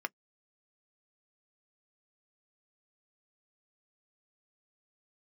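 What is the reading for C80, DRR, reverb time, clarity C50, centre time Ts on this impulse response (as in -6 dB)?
60.0 dB, 10.0 dB, not exponential, 48.5 dB, 2 ms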